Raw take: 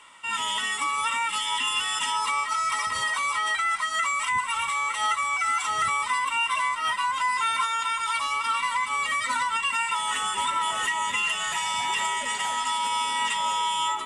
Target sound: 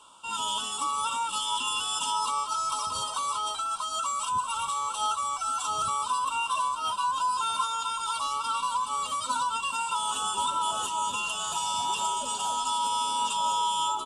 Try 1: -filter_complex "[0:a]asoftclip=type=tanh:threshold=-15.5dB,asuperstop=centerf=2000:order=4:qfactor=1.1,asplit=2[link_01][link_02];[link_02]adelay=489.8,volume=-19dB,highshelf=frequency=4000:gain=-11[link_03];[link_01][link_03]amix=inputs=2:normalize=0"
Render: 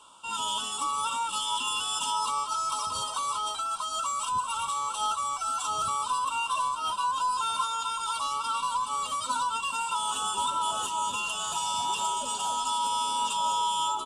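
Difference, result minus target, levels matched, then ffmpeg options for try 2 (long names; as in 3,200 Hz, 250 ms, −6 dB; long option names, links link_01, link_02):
soft clipping: distortion +12 dB
-filter_complex "[0:a]asoftclip=type=tanh:threshold=-9dB,asuperstop=centerf=2000:order=4:qfactor=1.1,asplit=2[link_01][link_02];[link_02]adelay=489.8,volume=-19dB,highshelf=frequency=4000:gain=-11[link_03];[link_01][link_03]amix=inputs=2:normalize=0"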